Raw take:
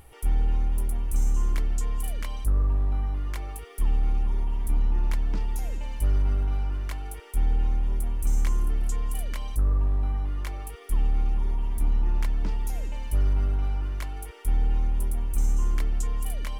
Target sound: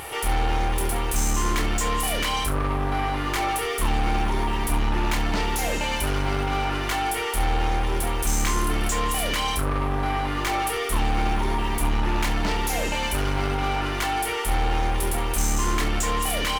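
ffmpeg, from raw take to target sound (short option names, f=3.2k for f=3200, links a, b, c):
-filter_complex "[0:a]asplit=2[a][b];[b]highpass=f=720:p=1,volume=32dB,asoftclip=type=tanh:threshold=-14.5dB[c];[a][c]amix=inputs=2:normalize=0,lowpass=f=7.3k:p=1,volume=-6dB,aecho=1:1:28|68:0.531|0.211,volume=-2dB"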